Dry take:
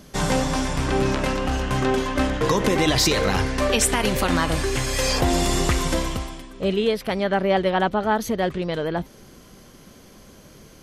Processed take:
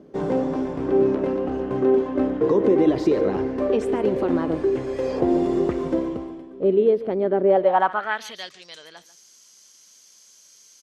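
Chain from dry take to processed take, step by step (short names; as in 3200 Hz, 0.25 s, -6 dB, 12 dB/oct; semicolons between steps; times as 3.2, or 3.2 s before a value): echo 0.142 s -16 dB; band-pass sweep 370 Hz -> 6300 Hz, 7.43–8.57; gain +7 dB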